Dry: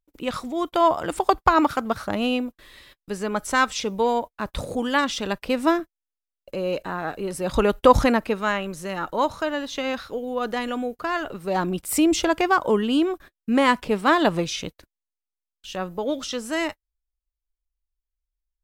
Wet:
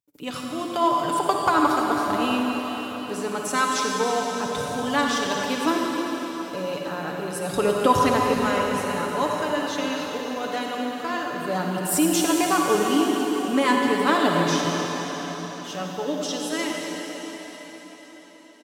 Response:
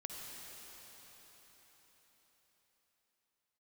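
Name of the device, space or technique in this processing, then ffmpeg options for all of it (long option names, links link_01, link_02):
cathedral: -filter_complex "[0:a]highpass=frequency=83:width=0.5412,highpass=frequency=83:width=1.3066,aecho=1:1:6.9:0.5[link_01];[1:a]atrim=start_sample=2205[link_02];[link_01][link_02]afir=irnorm=-1:irlink=0,bass=frequency=250:gain=2,treble=frequency=4000:gain=6"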